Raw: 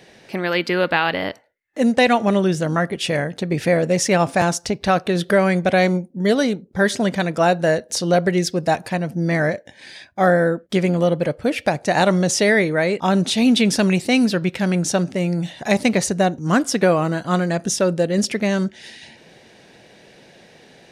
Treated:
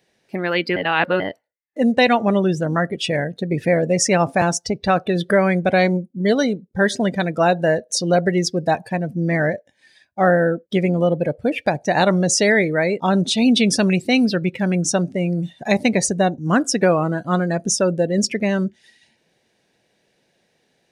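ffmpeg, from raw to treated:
-filter_complex "[0:a]asplit=3[s0][s1][s2];[s0]atrim=end=0.762[s3];[s1]atrim=start=0.758:end=1.202,asetpts=PTS-STARTPTS,areverse[s4];[s2]atrim=start=1.198[s5];[s3][s4]acrossfade=d=0.004:c1=hsin:c2=hsin[s6];[s6][s5]acrossfade=d=0.004:c1=hsin:c2=hsin,afftdn=nr=18:nf=-28,highshelf=f=7400:g=9"

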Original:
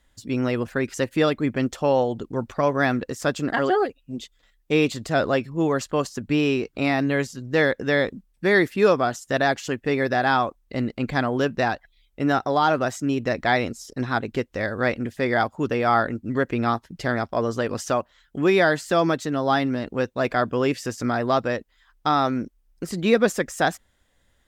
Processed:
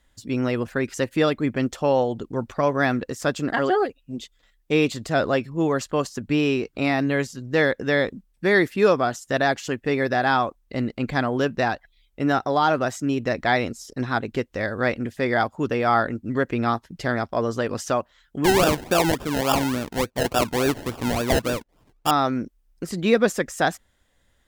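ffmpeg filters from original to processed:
-filter_complex "[0:a]asettb=1/sr,asplit=3[s0][s1][s2];[s0]atrim=end=18.444[s3];[s1]atrim=start=18.44:end=22.11,asetpts=PTS-STARTPTS,afade=t=in:d=0.004:c=qsin,afade=t=out:st=3.666:d=0.004:c=qsin,acrusher=samples=30:mix=1:aa=0.000001:lfo=1:lforange=18:lforate=3.5[s4];[s2]atrim=start=22.106[s5];[s3][s4]acrossfade=d=0.004:c1=hsin:c2=qsin[s6];[s6][s5]acrossfade=d=0.004:c1=qsin:c2=hsin"

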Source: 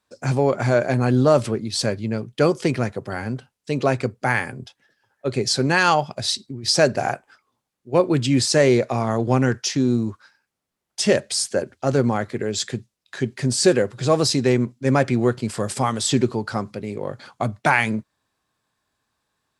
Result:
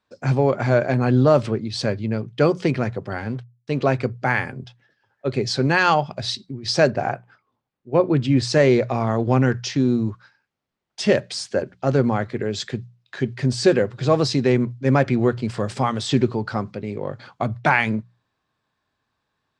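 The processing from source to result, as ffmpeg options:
-filter_complex "[0:a]asettb=1/sr,asplit=3[s0][s1][s2];[s0]atrim=end=3.184[s3];[s1]atrim=start=3.18:end=3.82,asetpts=PTS-STARTPTS,afade=t=in:d=0.004:c=qsin,afade=t=out:st=0.636:d=0.004:c=qsin,aeval=exprs='sgn(val(0))*max(abs(val(0))-0.00531,0)':c=same[s4];[s2]atrim=start=3.816[s5];[s3][s4]acrossfade=d=0.004:c1=hsin:c2=qsin[s6];[s6][s5]acrossfade=d=0.004:c1=qsin:c2=hsin,asettb=1/sr,asplit=3[s7][s8][s9];[s7]atrim=end=6.904[s10];[s8]atrim=start=6.9:end=8.43,asetpts=PTS-STARTPTS,afade=t=in:d=0.004:c=qsin,afade=t=out:st=1.526:d=0.004:c=qsin,highshelf=f=2700:g=-8[s11];[s9]atrim=start=8.426[s12];[s10][s11]acrossfade=d=0.004:c1=hsin:c2=qsin[s13];[s13][s12]acrossfade=d=0.004:c1=qsin:c2=hsin,lowpass=4400,equalizer=f=120:w=1.5:g=3,bandreject=f=60:t=h:w=6,bandreject=f=120:t=h:w=6,bandreject=f=180:t=h:w=6"

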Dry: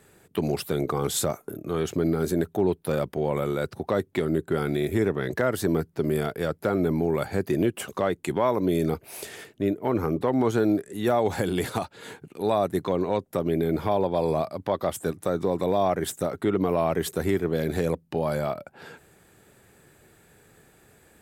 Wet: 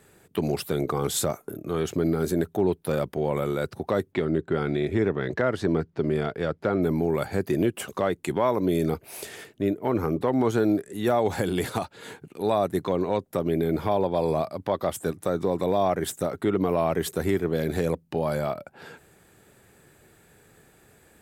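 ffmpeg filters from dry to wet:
-filter_complex "[0:a]asplit=3[s0][s1][s2];[s0]afade=t=out:st=4.12:d=0.02[s3];[s1]lowpass=4400,afade=t=in:st=4.12:d=0.02,afade=t=out:st=6.81:d=0.02[s4];[s2]afade=t=in:st=6.81:d=0.02[s5];[s3][s4][s5]amix=inputs=3:normalize=0"

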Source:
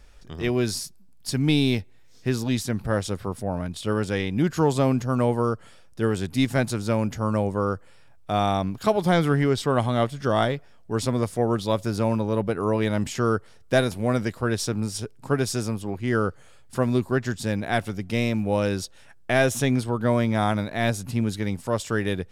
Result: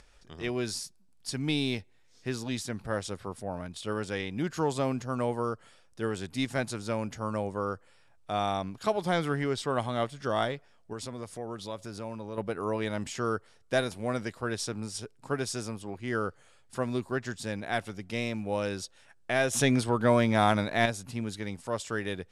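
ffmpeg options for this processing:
-filter_complex "[0:a]asettb=1/sr,asplit=3[s0][s1][s2];[s0]atrim=end=10.934[s3];[s1]atrim=start=10.93:end=12.38,asetpts=PTS-STARTPTS,afade=t=in:d=0.004:c=qsin,afade=t=out:st=1.446:d=0.004:c=qsin,acompressor=threshold=0.0282:ratio=2:attack=3.2:release=140:knee=1:detection=peak[s4];[s2]atrim=start=12.376[s5];[s3][s4]acrossfade=d=0.004:c1=hsin:c2=qsin[s6];[s6][s5]acrossfade=d=0.004:c1=qsin:c2=hsin,asettb=1/sr,asplit=3[s7][s8][s9];[s7]atrim=end=19.534[s10];[s8]atrim=start=19.53:end=20.86,asetpts=PTS-STARTPTS,afade=t=in:d=0.004:c=qsin,afade=t=out:st=1.326:d=0.004:c=qsin,acontrast=89[s11];[s9]atrim=start=20.856[s12];[s10][s11]acrossfade=d=0.004:c1=hsin:c2=qsin[s13];[s13][s12]acrossfade=d=0.004:c1=qsin:c2=hsin,acompressor=mode=upward:threshold=0.00631:ratio=2.5,lowpass=f=11000:w=0.5412,lowpass=f=11000:w=1.3066,lowshelf=f=310:g=-7,volume=0.562"

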